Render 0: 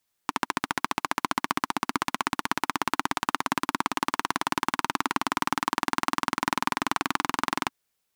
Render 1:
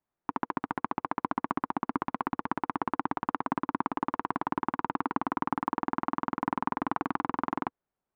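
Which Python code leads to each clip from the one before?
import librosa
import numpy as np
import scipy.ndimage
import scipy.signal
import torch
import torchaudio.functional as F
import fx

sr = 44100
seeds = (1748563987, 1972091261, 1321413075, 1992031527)

y = scipy.signal.sosfilt(scipy.signal.butter(2, 1000.0, 'lowpass', fs=sr, output='sos'), x)
y = fx.peak_eq(y, sr, hz=87.0, db=-4.5, octaves=0.61)
y = fx.notch(y, sr, hz=480.0, q=12.0)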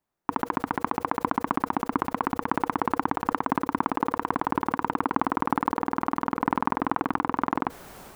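y = fx.sustainer(x, sr, db_per_s=50.0)
y = y * librosa.db_to_amplitude(5.0)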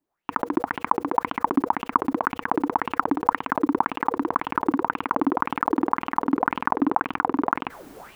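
y = fx.bell_lfo(x, sr, hz=1.9, low_hz=270.0, high_hz=3000.0, db=17)
y = y * librosa.db_to_amplitude(-4.5)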